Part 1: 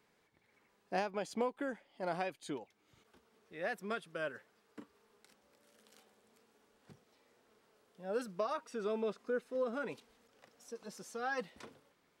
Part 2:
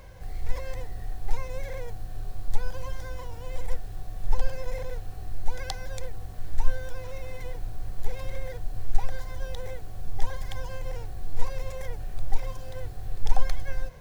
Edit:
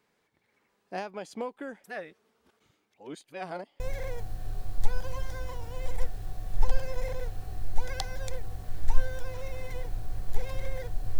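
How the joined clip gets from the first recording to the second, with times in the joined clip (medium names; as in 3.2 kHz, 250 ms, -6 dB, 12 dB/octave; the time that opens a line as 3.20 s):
part 1
1.84–3.80 s: reverse
3.80 s: go over to part 2 from 1.50 s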